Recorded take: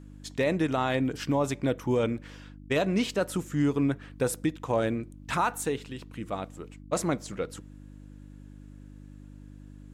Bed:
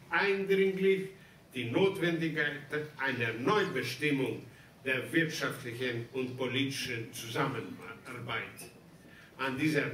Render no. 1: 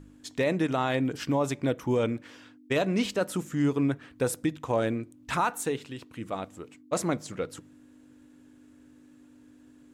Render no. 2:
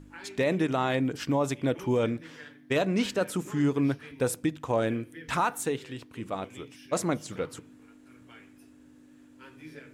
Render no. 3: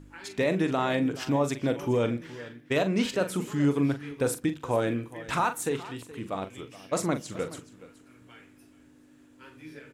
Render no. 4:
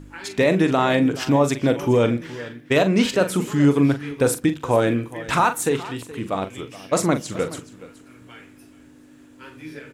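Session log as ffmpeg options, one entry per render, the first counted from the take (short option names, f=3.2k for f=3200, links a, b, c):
-af "bandreject=f=50:t=h:w=4,bandreject=f=100:t=h:w=4,bandreject=f=150:t=h:w=4,bandreject=f=200:t=h:w=4"
-filter_complex "[1:a]volume=-17dB[a];[0:a][a]amix=inputs=2:normalize=0"
-filter_complex "[0:a]asplit=2[a][b];[b]adelay=42,volume=-10dB[c];[a][c]amix=inputs=2:normalize=0,aecho=1:1:423:0.133"
-af "volume=8dB"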